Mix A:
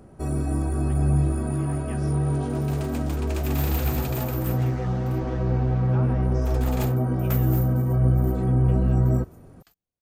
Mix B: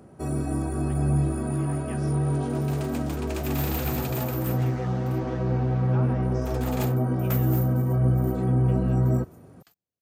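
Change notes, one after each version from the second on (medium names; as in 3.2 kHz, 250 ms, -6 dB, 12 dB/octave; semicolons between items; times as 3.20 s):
master: add high-pass 96 Hz 12 dB/octave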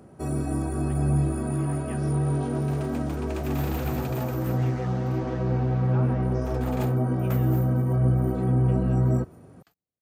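speech: add distance through air 74 m; second sound: add treble shelf 3 kHz -9.5 dB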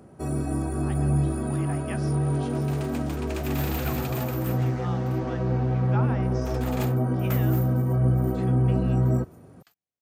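speech +8.0 dB; second sound: add tilt shelf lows -6 dB, about 920 Hz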